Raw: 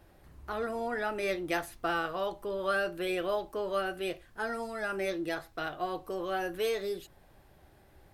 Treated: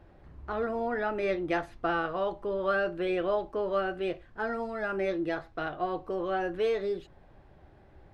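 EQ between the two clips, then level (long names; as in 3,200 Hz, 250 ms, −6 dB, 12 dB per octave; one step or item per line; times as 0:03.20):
head-to-tape spacing loss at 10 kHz 25 dB
+4.5 dB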